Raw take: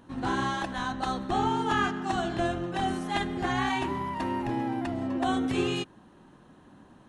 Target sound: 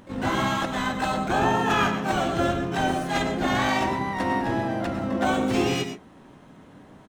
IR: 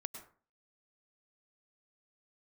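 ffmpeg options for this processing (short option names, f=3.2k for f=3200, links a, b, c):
-filter_complex "[0:a]acontrast=45,asplit=4[a][b][c][d];[b]asetrate=35002,aresample=44100,atempo=1.25992,volume=-6dB[e];[c]asetrate=52444,aresample=44100,atempo=0.840896,volume=-15dB[f];[d]asetrate=88200,aresample=44100,atempo=0.5,volume=-7dB[g];[a][e][f][g]amix=inputs=4:normalize=0[h];[1:a]atrim=start_sample=2205,afade=t=out:st=0.19:d=0.01,atrim=end_sample=8820[i];[h][i]afir=irnorm=-1:irlink=0"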